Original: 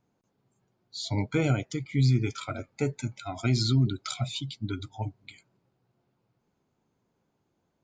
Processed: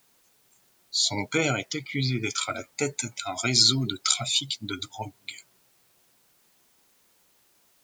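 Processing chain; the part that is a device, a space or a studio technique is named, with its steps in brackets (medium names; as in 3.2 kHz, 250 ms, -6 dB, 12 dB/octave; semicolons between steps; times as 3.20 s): 1.37–2.22 s: low-pass 7.6 kHz -> 3.4 kHz 24 dB/octave; turntable without a phono preamp (RIAA curve recording; white noise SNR 35 dB); trim +5 dB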